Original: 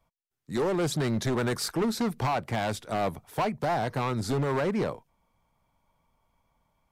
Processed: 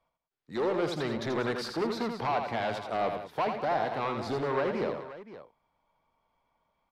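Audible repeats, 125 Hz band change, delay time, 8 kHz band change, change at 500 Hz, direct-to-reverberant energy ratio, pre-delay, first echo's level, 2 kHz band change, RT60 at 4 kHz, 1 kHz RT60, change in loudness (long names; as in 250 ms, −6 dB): 3, −9.5 dB, 83 ms, below −10 dB, −0.5 dB, no reverb audible, no reverb audible, −6.0 dB, −1.0 dB, no reverb audible, no reverb audible, −2.5 dB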